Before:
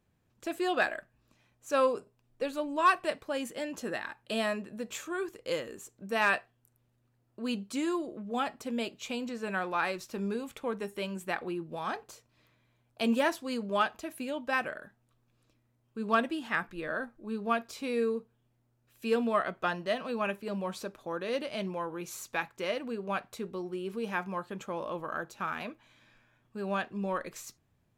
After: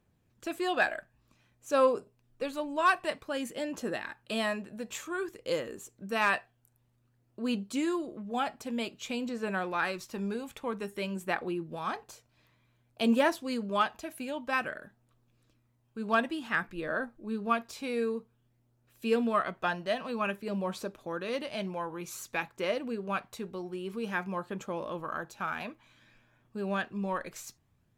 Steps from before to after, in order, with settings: phaser 0.53 Hz, delay 1.4 ms, feedback 25%

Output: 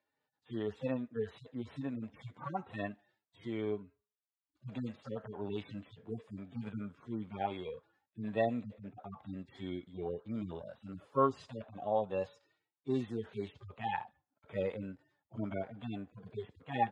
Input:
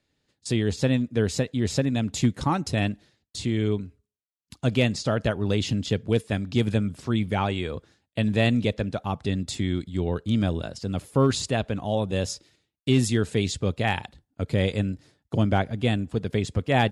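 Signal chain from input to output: harmonic-percussive separation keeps harmonic; band-pass filter 990 Hz, Q 1.5; trim +2 dB

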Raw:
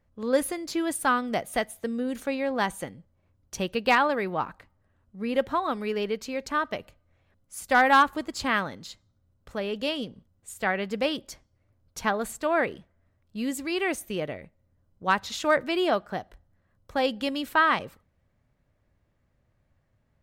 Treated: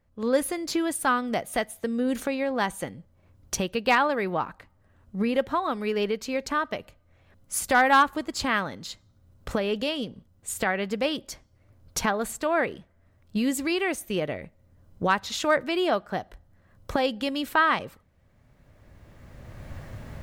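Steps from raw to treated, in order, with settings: recorder AGC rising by 15 dB/s

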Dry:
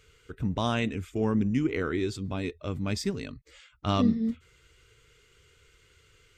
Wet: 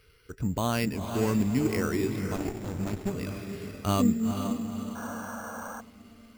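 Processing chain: echo that smears into a reverb 474 ms, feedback 47%, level -6.5 dB; 4.95–5.81 s: painted sound noise 450–1700 Hz -40 dBFS; careless resampling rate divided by 6×, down filtered, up hold; 2.36–3.11 s: sliding maximum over 33 samples

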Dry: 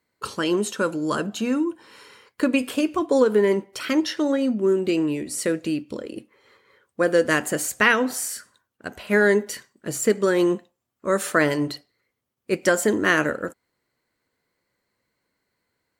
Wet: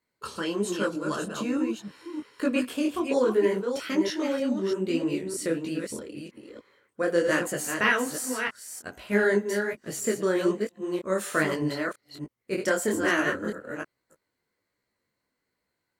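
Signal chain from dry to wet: chunks repeated in reverse 314 ms, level -5.5 dB; detune thickener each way 42 cents; trim -2 dB

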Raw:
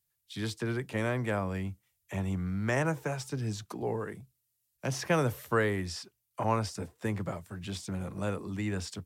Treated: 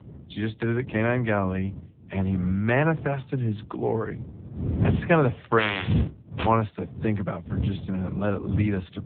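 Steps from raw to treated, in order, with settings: 5.58–6.45 s: spectral contrast reduction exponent 0.21; wind noise 100 Hz -33 dBFS; trim +8 dB; AMR-NB 6.7 kbps 8 kHz

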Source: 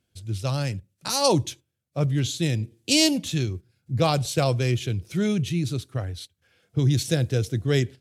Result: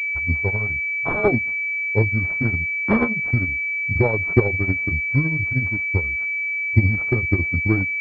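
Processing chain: rotating-head pitch shifter -5 st; transient shaper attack +11 dB, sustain -9 dB; class-D stage that switches slowly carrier 2.3 kHz; trim -1 dB

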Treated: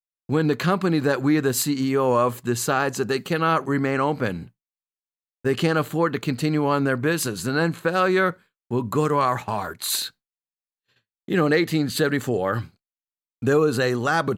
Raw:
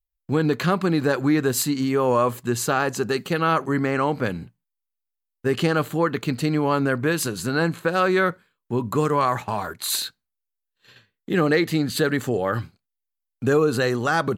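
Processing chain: expander -40 dBFS

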